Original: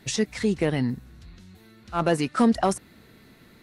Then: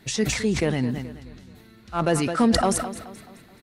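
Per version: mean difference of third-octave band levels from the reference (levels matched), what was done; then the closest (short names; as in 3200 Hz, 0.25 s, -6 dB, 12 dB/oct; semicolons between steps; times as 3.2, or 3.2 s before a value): 5.5 dB: on a send: feedback echo 0.214 s, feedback 45%, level -14.5 dB; on the sum: sustainer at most 56 dB/s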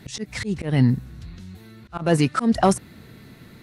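3.5 dB: bell 120 Hz +7.5 dB 1.4 oct; auto swell 0.183 s; gain +4.5 dB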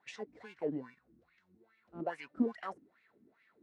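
9.5 dB: in parallel at -11.5 dB: sample-and-hold 35×; on the sum: wah 2.4 Hz 260–2300 Hz, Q 5.3; gain -4.5 dB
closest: second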